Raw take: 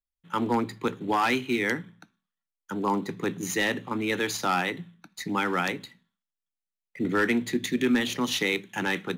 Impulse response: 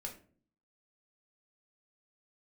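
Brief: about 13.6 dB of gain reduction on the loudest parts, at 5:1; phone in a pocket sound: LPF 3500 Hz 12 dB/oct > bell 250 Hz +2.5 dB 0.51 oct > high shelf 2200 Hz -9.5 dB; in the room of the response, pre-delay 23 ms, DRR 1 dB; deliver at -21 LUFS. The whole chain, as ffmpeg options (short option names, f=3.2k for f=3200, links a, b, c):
-filter_complex "[0:a]acompressor=threshold=-36dB:ratio=5,asplit=2[a][b];[1:a]atrim=start_sample=2205,adelay=23[c];[b][c]afir=irnorm=-1:irlink=0,volume=1dB[d];[a][d]amix=inputs=2:normalize=0,lowpass=3.5k,equalizer=f=250:t=o:w=0.51:g=2.5,highshelf=f=2.2k:g=-9.5,volume=16dB"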